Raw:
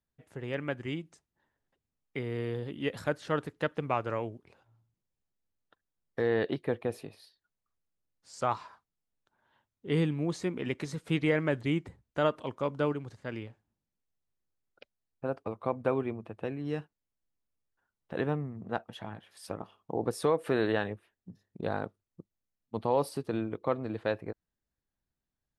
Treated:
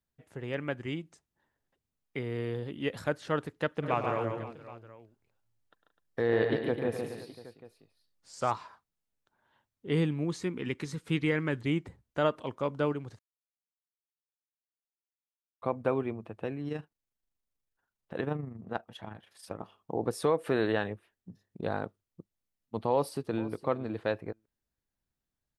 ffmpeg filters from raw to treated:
-filter_complex "[0:a]asplit=3[a][b][c];[a]afade=t=out:st=3.82:d=0.02[d];[b]aecho=1:1:103|140|176|253|523|771:0.282|0.562|0.211|0.282|0.126|0.112,afade=t=in:st=3.82:d=0.02,afade=t=out:st=8.5:d=0.02[e];[c]afade=t=in:st=8.5:d=0.02[f];[d][e][f]amix=inputs=3:normalize=0,asettb=1/sr,asplit=3[g][h][i];[g]atrim=end=10.244[j];[h]atrim=start=10.24:end=11.65,asetpts=PTS-STARTPTS,afade=t=in:d=0.004:c=qsin,afade=t=out:st=1.406:d=0.004:c=qsin,equalizer=f=640:w=2.6:g=-9.5[k];[i]atrim=start=11.646[l];[j][k]acrossfade=d=0.004:c1=hsin:c2=qsin[m];[m][l]acrossfade=d=0.004:c1=qsin:c2=hsin,asettb=1/sr,asplit=3[n][o][p];[n]atrim=end=16.684[q];[o]atrim=start=16.68:end=19.59,asetpts=PTS-STARTPTS,afade=t=in:d=0.004:c=qsin,afade=t=out:st=2.906:d=0.004:c=qsin,tremolo=f=25:d=0.519[r];[p]atrim=start=19.586[s];[q][r]acrossfade=d=0.004:c1=hsin:c2=qsin[t];[t][s]acrossfade=d=0.004:c1=qsin:c2=hsin,asplit=2[u][v];[v]afade=t=in:st=22.91:d=0.01,afade=t=out:st=23.53:d=0.01,aecho=0:1:460|920:0.133352|0.0133352[w];[u][w]amix=inputs=2:normalize=0,asplit=3[x][y][z];[x]atrim=end=13.19,asetpts=PTS-STARTPTS,afade=t=out:st=13.186:d=0.004:c=hsin[aa];[y]atrim=start=13.19:end=15.62,asetpts=PTS-STARTPTS,volume=0[ab];[z]atrim=start=15.62,asetpts=PTS-STARTPTS,afade=t=in:d=0.004:c=hsin[ac];[aa][ab][ac]concat=n=3:v=0:a=1"

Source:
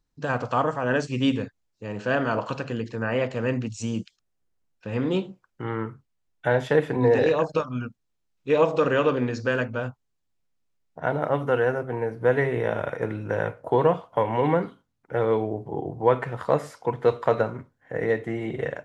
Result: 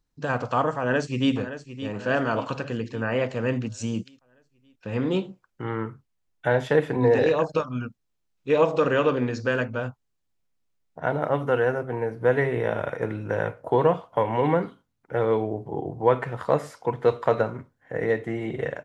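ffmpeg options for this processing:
-filter_complex "[0:a]asplit=2[a][b];[b]afade=t=in:st=0.79:d=0.01,afade=t=out:st=1.33:d=0.01,aecho=0:1:570|1140|1710|2280|2850|3420:0.251189|0.138154|0.0759846|0.0417915|0.0229853|0.0126419[c];[a][c]amix=inputs=2:normalize=0,asettb=1/sr,asplit=3[d][e][f];[d]atrim=end=12.394[g];[e]atrim=start=12.39:end=12.81,asetpts=PTS-STARTPTS,afade=t=in:d=0.004:c=qsin,afade=t=out:st=0.416:d=0.004:c=qsin,bandreject=f=6.4k:w=12[h];[f]atrim=start=12.806[i];[g][h]acrossfade=d=0.004:c1=hsin:c2=qsin[j];[j][i]acrossfade=d=0.004:c1=qsin:c2=hsin"

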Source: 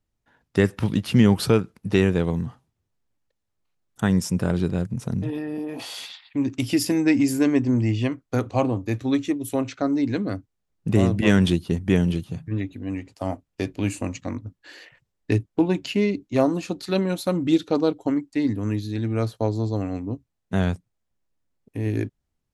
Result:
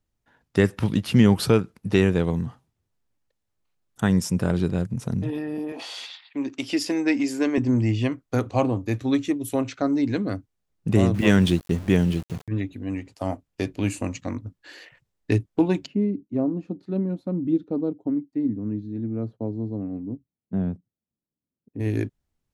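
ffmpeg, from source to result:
-filter_complex "[0:a]asettb=1/sr,asplit=3[a][b][c];[a]atrim=end=5.724[d];[b]atrim=start=5.72:end=7.58,asetpts=PTS-STARTPTS,afade=t=in:d=0.004:c=qsin,afade=t=out:st=1.856:d=0.004:c=qsin,highpass=320,lowpass=6.7k[e];[c]atrim=start=7.576[f];[d][e]acrossfade=d=0.004:c1=hsin:c2=qsin[g];[g][f]acrossfade=d=0.004:c1=qsin:c2=hsin,asettb=1/sr,asplit=3[h][i][j];[h]atrim=end=11.144[k];[i]atrim=start=11.14:end=12.48,asetpts=PTS-STARTPTS,afade=t=in:d=0.004:c=qsin,afade=t=out:st=1.336:d=0.004:c=qsin,aeval=exprs='val(0)*gte(abs(val(0)),0.015)':c=same[l];[j]atrim=start=12.476[m];[k][l]acrossfade=d=0.004:c1=hsin:c2=qsin[n];[n][m]acrossfade=d=0.004:c1=qsin:c2=hsin,asplit=3[o][p][q];[o]afade=t=out:st=15.85:d=0.02[r];[p]bandpass=f=220:t=q:w=1.3,afade=t=in:st=15.85:d=0.02,afade=t=out:st=21.79:d=0.02[s];[q]afade=t=in:st=21.79:d=0.02[t];[r][s][t]amix=inputs=3:normalize=0"

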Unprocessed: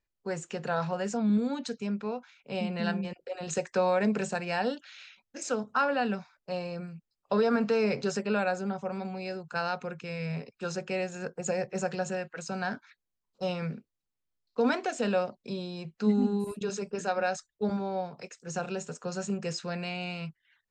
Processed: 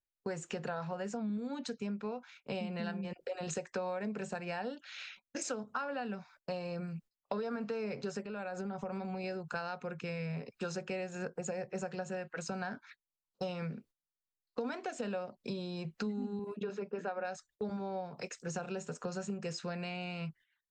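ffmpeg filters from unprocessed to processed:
-filter_complex "[0:a]asettb=1/sr,asplit=3[a][b][c];[a]atrim=end=8.214[d];[b]atrim=start=8.21:end=9.24,asetpts=PTS-STARTPTS,afade=t=in:d=0.004:c=qsin,afade=t=out:st=1.026:d=0.004:c=qsin,acompressor=threshold=-36dB:ratio=6:attack=3.2:release=140:knee=1:detection=peak[e];[c]atrim=start=9.236[f];[d][e]acrossfade=d=0.004:c1=hsin:c2=qsin[g];[g][f]acrossfade=d=0.004:c1=qsin:c2=hsin,asettb=1/sr,asplit=3[h][i][j];[h]atrim=end=16.394[k];[i]atrim=start=16.39:end=17.25,asetpts=PTS-STARTPTS,afade=t=in:d=0.004:c=qsin,afade=t=out:st=0.856:d=0.004:c=qsin,highpass=200,lowpass=2.4k[l];[j]atrim=start=17.246[m];[k][l]acrossfade=d=0.004:c1=hsin:c2=qsin[n];[n][m]acrossfade=d=0.004:c1=qsin:c2=hsin,agate=range=-18dB:threshold=-56dB:ratio=16:detection=peak,acompressor=threshold=-41dB:ratio=6,adynamicequalizer=threshold=0.00112:dfrequency=2800:dqfactor=0.7:tfrequency=2800:tqfactor=0.7:attack=5:release=100:ratio=0.375:range=2.5:mode=cutabove:tftype=highshelf,volume=5dB"

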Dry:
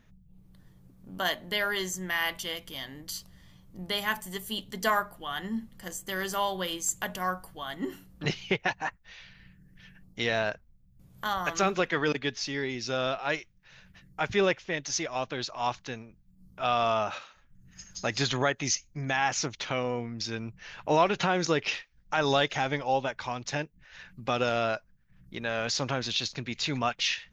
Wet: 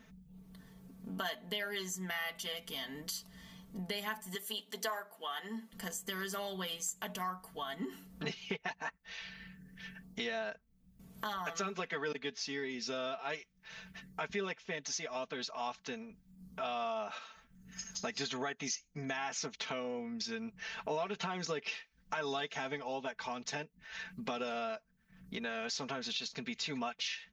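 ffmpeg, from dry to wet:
-filter_complex "[0:a]asettb=1/sr,asplit=3[a][b][c];[a]atrim=end=4.354[d];[b]atrim=start=4.35:end=5.73,asetpts=PTS-STARTPTS,afade=t=in:d=0.004:c=qsin,afade=t=out:st=1.376:d=0.004:c=qsin,highpass=390[e];[c]atrim=start=5.726[f];[d][e]acrossfade=d=0.004:c1=hsin:c2=qsin[g];[g][f]acrossfade=d=0.004:c1=qsin:c2=hsin,highpass=f=130:p=1,aecho=1:1:4.5:0.83,acompressor=threshold=-43dB:ratio=3,volume=2.5dB"

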